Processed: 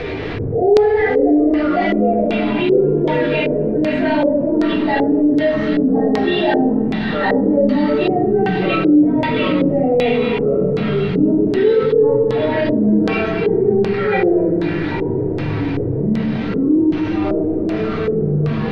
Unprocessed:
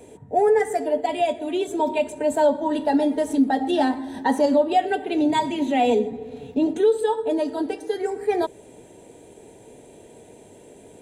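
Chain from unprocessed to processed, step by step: zero-crossing step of -35.5 dBFS; de-hum 67.22 Hz, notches 36; plain phase-vocoder stretch 1.7×; graphic EQ 250/1000/2000/4000/8000 Hz -6/-8/+7/-3/-12 dB; thin delay 0.262 s, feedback 64%, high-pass 2300 Hz, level -6 dB; shoebox room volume 670 m³, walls furnished, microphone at 3.6 m; echoes that change speed 0.228 s, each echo -6 st, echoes 3, each echo -6 dB; air absorption 210 m; LFO low-pass square 1.3 Hz 460–4400 Hz; fast leveller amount 50%; gain -1 dB

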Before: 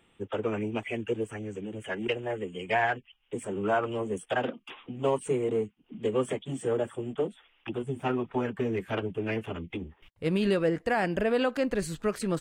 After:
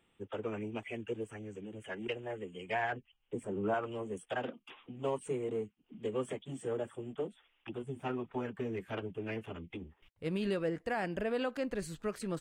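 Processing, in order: 2.92–3.74 tilt shelf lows +5 dB, about 1100 Hz; gain -8 dB

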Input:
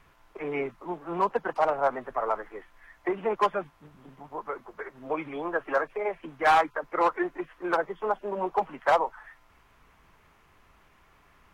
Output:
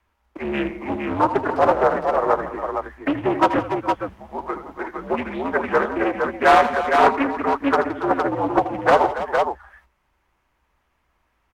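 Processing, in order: gate -54 dBFS, range -15 dB; in parallel at -11 dB: crossover distortion -41 dBFS; on the sum: frequency shift -76 Hz; on a send: tapped delay 80/167/282/462 ms -11/-17/-12.5/-4.5 dB; on the sum: Doppler distortion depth 0.42 ms; gain +5 dB

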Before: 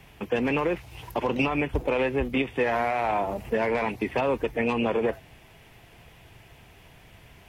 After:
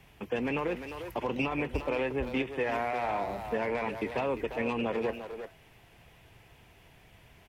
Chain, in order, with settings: speakerphone echo 0.35 s, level -7 dB; gain -6 dB

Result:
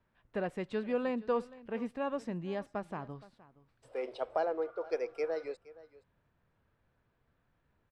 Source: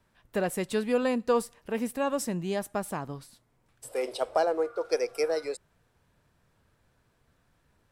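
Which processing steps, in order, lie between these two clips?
LPF 2900 Hz 12 dB/oct; on a send: echo 0.469 s -19.5 dB; on the sum: gain -6.5 dB

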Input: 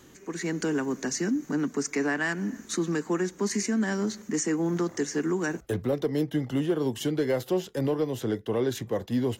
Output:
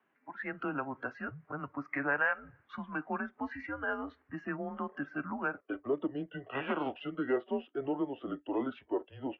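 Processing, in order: 6.45–7 spectral contrast lowered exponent 0.68; mistuned SSB -140 Hz 510–2600 Hz; spectral noise reduction 15 dB

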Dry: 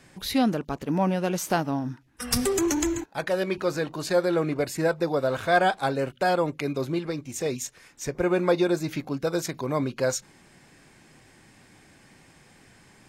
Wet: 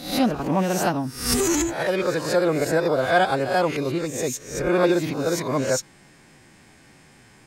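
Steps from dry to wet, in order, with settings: spectral swells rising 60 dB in 0.90 s; time stretch by phase-locked vocoder 0.57×; gain +2 dB

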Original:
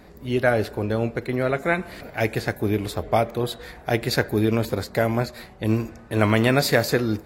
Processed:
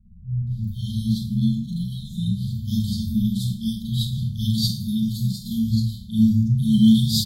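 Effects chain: high shelf 2200 Hz -9.5 dB; bands offset in time lows, highs 0.47 s, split 160 Hz; Schroeder reverb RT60 0.46 s, combs from 32 ms, DRR -9 dB; dynamic EQ 3400 Hz, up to +3 dB, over -30 dBFS, Q 0.73; 4.67–5.51 fixed phaser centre 390 Hz, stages 8; FFT band-reject 230–3100 Hz

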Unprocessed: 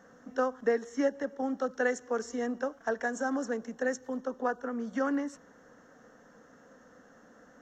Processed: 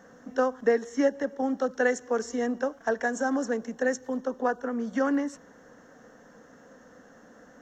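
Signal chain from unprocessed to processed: bell 1300 Hz -3.5 dB 0.33 oct; gain +4.5 dB

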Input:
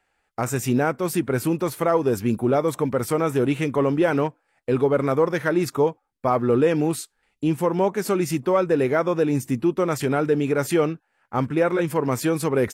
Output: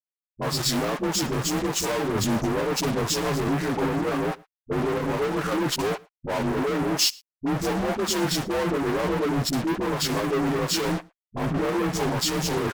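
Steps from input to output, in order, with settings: inharmonic rescaling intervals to 86%; fuzz box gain 44 dB, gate -41 dBFS; dispersion highs, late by 51 ms, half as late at 380 Hz; on a send: echo 0.111 s -22.5 dB; on the sum: limiter -7.5 dBFS, peak gain reduction 6 dB; three-band expander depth 100%; gain -8.5 dB

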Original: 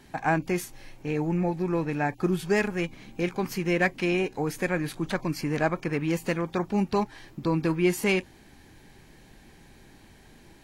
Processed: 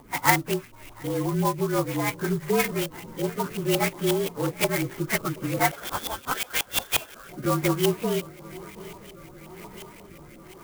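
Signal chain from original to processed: inharmonic rescaling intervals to 113%; low shelf 170 Hz +6.5 dB; in parallel at 0 dB: compressor, threshold -40 dBFS, peak gain reduction 20 dB; on the sum: tilt +2.5 dB/oct; on a send: swung echo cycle 0.969 s, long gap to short 3:1, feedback 69%, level -22 dB; 5.71–7.29 on the sum: inverted band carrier 3700 Hz; LFO low-pass saw up 5.6 Hz 850–2800 Hz; upward compressor, threshold -50 dBFS; rotary speaker horn 6 Hz, later 1 Hz, at 6.1; clock jitter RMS 0.054 ms; gain +4.5 dB

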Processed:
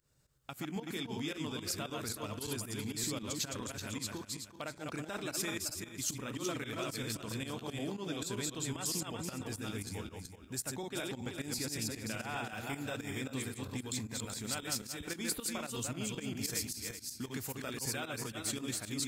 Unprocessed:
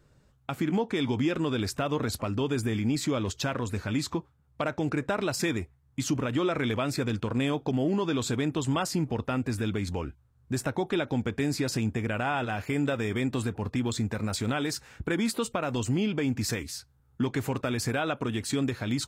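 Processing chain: regenerating reverse delay 0.19 s, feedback 49%, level -2 dB; pre-emphasis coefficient 0.8; pump 113 bpm, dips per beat 2, -14 dB, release 0.114 s

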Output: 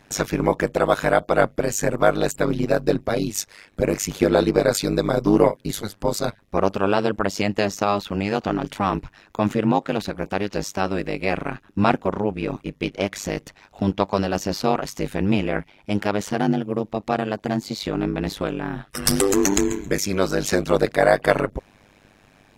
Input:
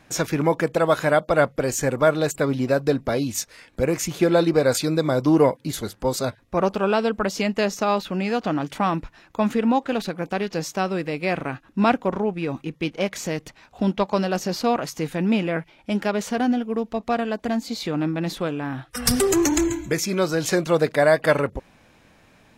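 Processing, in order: AM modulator 100 Hz, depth 100%; gain +4.5 dB

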